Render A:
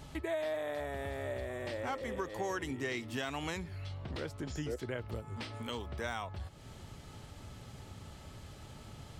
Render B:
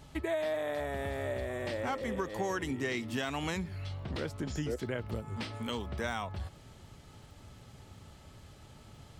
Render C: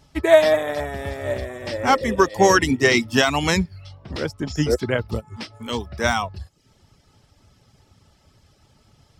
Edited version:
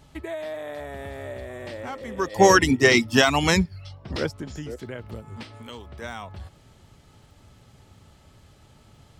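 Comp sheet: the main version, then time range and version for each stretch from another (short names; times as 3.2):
B
2.28–4.34 from C, crossfade 0.24 s
5.43–6.02 from A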